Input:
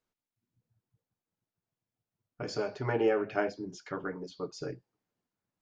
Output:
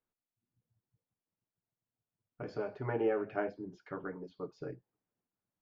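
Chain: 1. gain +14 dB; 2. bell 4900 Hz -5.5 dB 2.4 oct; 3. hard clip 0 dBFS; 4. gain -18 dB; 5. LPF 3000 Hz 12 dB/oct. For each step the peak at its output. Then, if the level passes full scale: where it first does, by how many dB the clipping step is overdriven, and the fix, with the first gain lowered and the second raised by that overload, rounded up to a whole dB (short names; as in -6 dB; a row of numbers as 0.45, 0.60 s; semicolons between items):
-1.0, -2.0, -2.0, -20.0, -20.0 dBFS; no overload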